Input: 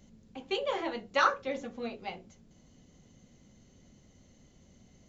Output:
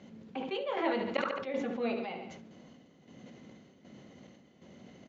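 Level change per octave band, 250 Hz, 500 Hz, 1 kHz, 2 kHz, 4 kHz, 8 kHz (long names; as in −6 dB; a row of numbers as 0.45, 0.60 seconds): +5.0 dB, +1.0 dB, −5.0 dB, −5.0 dB, −4.5 dB, can't be measured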